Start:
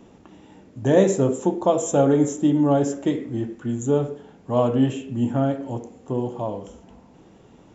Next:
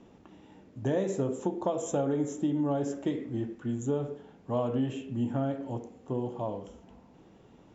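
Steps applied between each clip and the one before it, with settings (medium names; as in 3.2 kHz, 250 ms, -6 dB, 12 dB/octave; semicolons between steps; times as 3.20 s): low-pass 6.3 kHz 12 dB/octave; compression 6:1, threshold -19 dBFS, peak gain reduction 8.5 dB; trim -6 dB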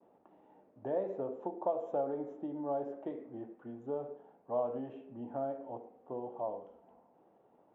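expander -54 dBFS; band-pass filter 700 Hz, Q 1.8; distance through air 200 m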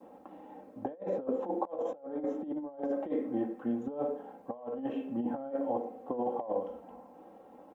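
comb 3.8 ms, depth 67%; compressor with a negative ratio -40 dBFS, ratio -0.5; trim +6.5 dB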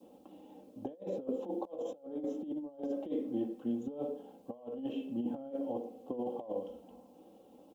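FFT filter 350 Hz 0 dB, 540 Hz -3 dB, 800 Hz -8 dB, 1.9 kHz -13 dB, 3 kHz +7 dB; trim -2 dB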